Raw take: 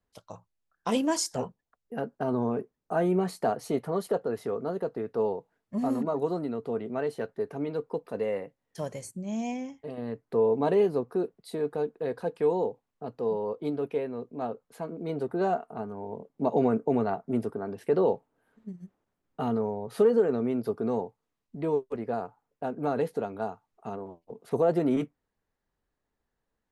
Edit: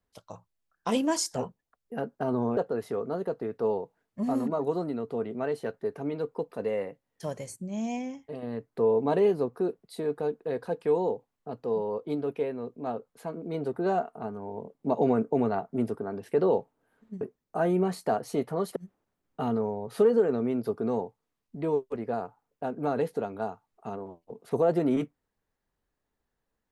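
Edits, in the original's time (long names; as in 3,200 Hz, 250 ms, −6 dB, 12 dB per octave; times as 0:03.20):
0:02.57–0:04.12: move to 0:18.76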